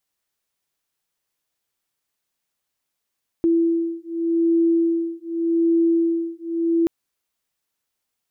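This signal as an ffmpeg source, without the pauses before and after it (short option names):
-f lavfi -i "aevalsrc='0.1*(sin(2*PI*333*t)+sin(2*PI*333.85*t))':d=3.43:s=44100"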